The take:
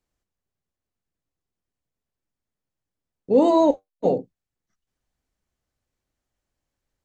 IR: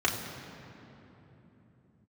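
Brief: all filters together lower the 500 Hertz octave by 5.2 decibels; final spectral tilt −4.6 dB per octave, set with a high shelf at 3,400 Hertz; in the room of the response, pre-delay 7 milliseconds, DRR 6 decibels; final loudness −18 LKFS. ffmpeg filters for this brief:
-filter_complex "[0:a]equalizer=frequency=500:width_type=o:gain=-7,highshelf=frequency=3400:gain=6.5,asplit=2[link_01][link_02];[1:a]atrim=start_sample=2205,adelay=7[link_03];[link_02][link_03]afir=irnorm=-1:irlink=0,volume=-17.5dB[link_04];[link_01][link_04]amix=inputs=2:normalize=0,volume=5dB"

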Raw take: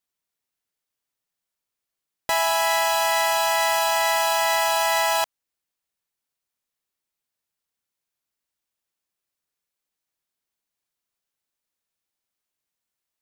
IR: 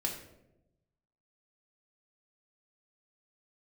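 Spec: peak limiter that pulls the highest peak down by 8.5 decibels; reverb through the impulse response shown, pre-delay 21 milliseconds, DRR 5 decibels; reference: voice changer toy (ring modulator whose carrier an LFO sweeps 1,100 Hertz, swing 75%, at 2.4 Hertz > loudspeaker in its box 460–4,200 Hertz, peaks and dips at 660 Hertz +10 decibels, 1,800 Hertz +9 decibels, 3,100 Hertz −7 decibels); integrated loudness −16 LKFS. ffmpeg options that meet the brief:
-filter_complex "[0:a]alimiter=limit=-20dB:level=0:latency=1,asplit=2[link_01][link_02];[1:a]atrim=start_sample=2205,adelay=21[link_03];[link_02][link_03]afir=irnorm=-1:irlink=0,volume=-8dB[link_04];[link_01][link_04]amix=inputs=2:normalize=0,aeval=exprs='val(0)*sin(2*PI*1100*n/s+1100*0.75/2.4*sin(2*PI*2.4*n/s))':channel_layout=same,highpass=460,equalizer=frequency=660:width_type=q:width=4:gain=10,equalizer=frequency=1800:width_type=q:width=4:gain=9,equalizer=frequency=3100:width_type=q:width=4:gain=-7,lowpass=frequency=4200:width=0.5412,lowpass=frequency=4200:width=1.3066,volume=12.5dB"

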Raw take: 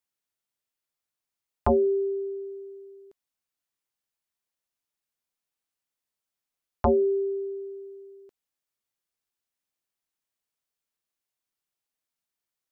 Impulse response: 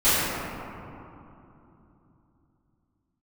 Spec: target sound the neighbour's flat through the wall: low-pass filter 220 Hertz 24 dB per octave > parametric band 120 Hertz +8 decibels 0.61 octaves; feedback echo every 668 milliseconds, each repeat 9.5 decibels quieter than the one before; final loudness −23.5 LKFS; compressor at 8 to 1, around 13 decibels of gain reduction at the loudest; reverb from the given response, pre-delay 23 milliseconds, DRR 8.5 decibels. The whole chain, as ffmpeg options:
-filter_complex "[0:a]acompressor=threshold=-32dB:ratio=8,aecho=1:1:668|1336|2004|2672:0.335|0.111|0.0365|0.012,asplit=2[link_01][link_02];[1:a]atrim=start_sample=2205,adelay=23[link_03];[link_02][link_03]afir=irnorm=-1:irlink=0,volume=-28.5dB[link_04];[link_01][link_04]amix=inputs=2:normalize=0,lowpass=frequency=220:width=0.5412,lowpass=frequency=220:width=1.3066,equalizer=frequency=120:width_type=o:width=0.61:gain=8,volume=25.5dB"

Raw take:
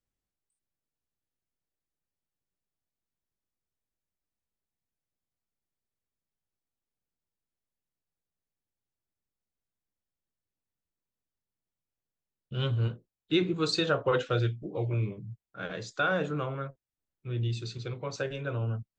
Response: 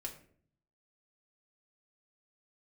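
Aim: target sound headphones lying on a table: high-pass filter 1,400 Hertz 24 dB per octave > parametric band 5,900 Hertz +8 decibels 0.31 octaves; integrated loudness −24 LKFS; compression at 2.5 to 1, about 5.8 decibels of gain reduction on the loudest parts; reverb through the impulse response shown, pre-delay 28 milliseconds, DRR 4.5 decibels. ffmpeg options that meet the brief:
-filter_complex "[0:a]acompressor=threshold=-30dB:ratio=2.5,asplit=2[link_01][link_02];[1:a]atrim=start_sample=2205,adelay=28[link_03];[link_02][link_03]afir=irnorm=-1:irlink=0,volume=-2.5dB[link_04];[link_01][link_04]amix=inputs=2:normalize=0,highpass=frequency=1400:width=0.5412,highpass=frequency=1400:width=1.3066,equalizer=frequency=5900:width_type=o:width=0.31:gain=8,volume=15.5dB"

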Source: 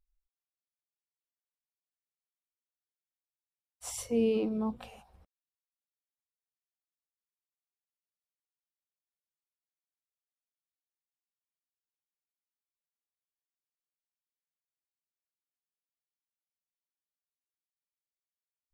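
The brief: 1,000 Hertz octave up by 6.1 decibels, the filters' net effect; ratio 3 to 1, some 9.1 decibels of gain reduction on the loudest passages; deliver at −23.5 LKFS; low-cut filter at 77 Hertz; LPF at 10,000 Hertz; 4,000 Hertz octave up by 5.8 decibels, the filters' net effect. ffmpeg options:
ffmpeg -i in.wav -af "highpass=77,lowpass=10000,equalizer=frequency=1000:width_type=o:gain=7,equalizer=frequency=4000:width_type=o:gain=8.5,acompressor=threshold=-35dB:ratio=3,volume=15dB" out.wav

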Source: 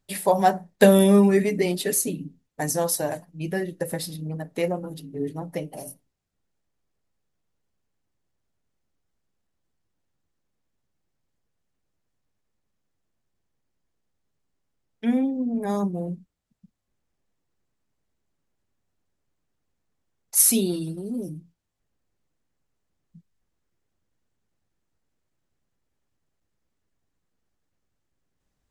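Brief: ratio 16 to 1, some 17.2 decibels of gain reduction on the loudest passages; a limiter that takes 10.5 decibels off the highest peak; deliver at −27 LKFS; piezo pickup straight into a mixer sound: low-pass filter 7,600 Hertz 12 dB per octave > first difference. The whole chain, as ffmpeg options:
ffmpeg -i in.wav -af "acompressor=threshold=-27dB:ratio=16,alimiter=level_in=1.5dB:limit=-24dB:level=0:latency=1,volume=-1.5dB,lowpass=7600,aderivative,volume=19.5dB" out.wav

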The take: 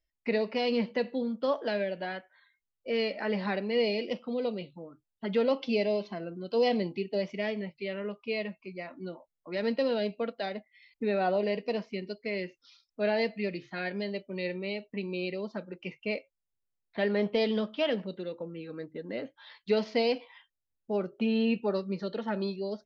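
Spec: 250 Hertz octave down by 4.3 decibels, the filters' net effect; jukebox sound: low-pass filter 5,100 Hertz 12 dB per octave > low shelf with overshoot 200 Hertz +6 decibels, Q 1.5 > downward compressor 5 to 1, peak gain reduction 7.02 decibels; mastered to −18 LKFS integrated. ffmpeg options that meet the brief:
ffmpeg -i in.wav -af "lowpass=5100,lowshelf=frequency=200:width_type=q:width=1.5:gain=6,equalizer=frequency=250:width_type=o:gain=-7.5,acompressor=threshold=-31dB:ratio=5,volume=19.5dB" out.wav

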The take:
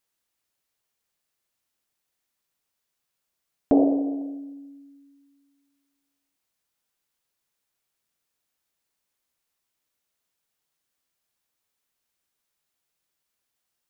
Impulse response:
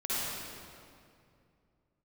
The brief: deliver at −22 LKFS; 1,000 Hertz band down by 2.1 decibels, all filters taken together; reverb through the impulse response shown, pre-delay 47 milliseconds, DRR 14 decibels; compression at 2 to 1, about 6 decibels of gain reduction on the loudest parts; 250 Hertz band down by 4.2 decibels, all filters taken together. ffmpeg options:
-filter_complex "[0:a]equalizer=frequency=250:width_type=o:gain=-4.5,equalizer=frequency=1000:width_type=o:gain=-3,acompressor=threshold=-28dB:ratio=2,asplit=2[link_01][link_02];[1:a]atrim=start_sample=2205,adelay=47[link_03];[link_02][link_03]afir=irnorm=-1:irlink=0,volume=-21.5dB[link_04];[link_01][link_04]amix=inputs=2:normalize=0,volume=13dB"

